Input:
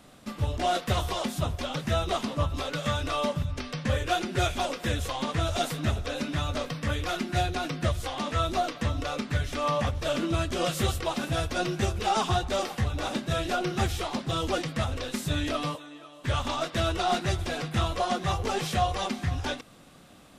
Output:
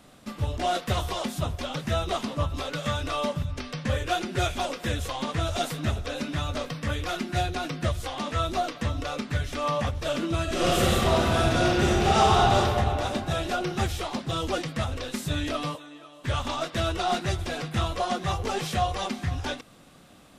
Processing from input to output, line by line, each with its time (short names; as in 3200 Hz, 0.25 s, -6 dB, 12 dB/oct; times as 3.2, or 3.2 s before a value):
10.42–12.55 reverb throw, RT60 2.6 s, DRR -5.5 dB